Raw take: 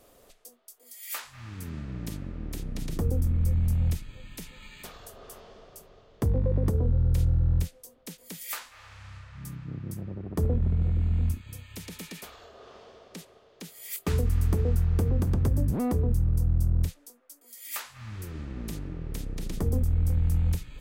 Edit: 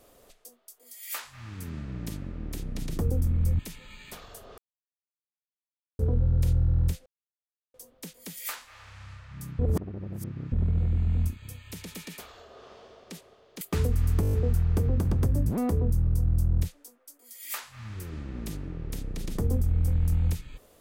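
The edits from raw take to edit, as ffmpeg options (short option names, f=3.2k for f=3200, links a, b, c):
-filter_complex "[0:a]asplit=14[a][b][c][d][e][f][g][h][i][j][k][l][m][n];[a]atrim=end=3.592[o];[b]atrim=start=4.308:end=5.3,asetpts=PTS-STARTPTS,afade=t=out:st=0.988:d=0.004:c=hsin[p];[c]atrim=start=5.3:end=6.71,asetpts=PTS-STARTPTS,volume=0[q];[d]atrim=start=6.71:end=7.78,asetpts=PTS-STARTPTS,afade=t=in:d=0.004:c=hsin,afade=t=out:st=1.066:d=0.004:c=hsin,apad=pad_dur=0.68[r];[e]atrim=start=7.78:end=9.632,asetpts=PTS-STARTPTS,afade=t=in:d=0.004:c=hsin[s];[f]atrim=start=9.628:end=10.562,asetpts=PTS-STARTPTS,areverse[t];[g]atrim=start=10.558:end=13.652[u];[h]atrim=start=13.948:end=14.572[v];[i]atrim=start=14.548:end=14.572[w];[j]atrim=start=14.548:end=14.572[x];[k]atrim=start=14.548:end=14.572[y];[l]atrim=start=14.548:end=14.572[z];[m]atrim=start=14.548:end=14.572[aa];[n]atrim=start=14.548[ab];[p][q][r][s]concat=n=4:v=0:a=1[ac];[o][ac]acrossfade=d=0.004:c1=hsin:c2=hsin[ad];[ad][t]acrossfade=d=0.004:c1=hsin:c2=hsin[ae];[ae][u]acrossfade=d=0.004:c1=hsin:c2=hsin[af];[af][v]acrossfade=d=0.004:c1=hsin:c2=hsin[ag];[ag][w]acrossfade=d=0.004:c1=hsin:c2=hsin[ah];[ah][x]acrossfade=d=0.004:c1=hsin:c2=hsin[ai];[ai][y]acrossfade=d=0.004:c1=hsin:c2=hsin[aj];[aj][z]acrossfade=d=0.004:c1=hsin:c2=hsin[ak];[ak][aa]acrossfade=d=0.004:c1=hsin:c2=hsin[al];[al][ab]acrossfade=d=0.004:c1=hsin:c2=hsin"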